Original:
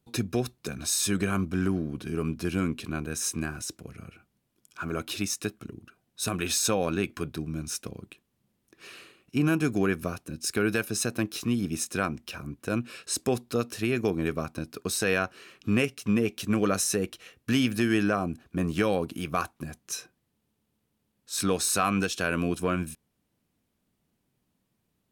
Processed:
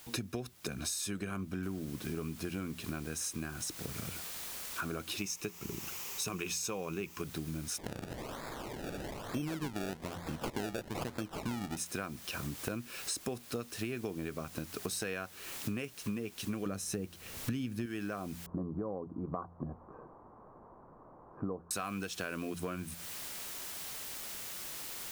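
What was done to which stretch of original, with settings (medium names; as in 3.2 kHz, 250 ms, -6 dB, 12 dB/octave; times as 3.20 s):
1.63 s: noise floor step -58 dB -47 dB
5.18–7.22 s: rippled EQ curve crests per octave 0.76, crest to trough 7 dB
7.78–11.77 s: decimation with a swept rate 29× 1.1 Hz
16.66–17.86 s: bass shelf 320 Hz +11.5 dB
18.46–21.71 s: elliptic low-pass 1.1 kHz, stop band 70 dB
whole clip: de-hum 86.39 Hz, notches 2; compression 8:1, threshold -39 dBFS; trim +4 dB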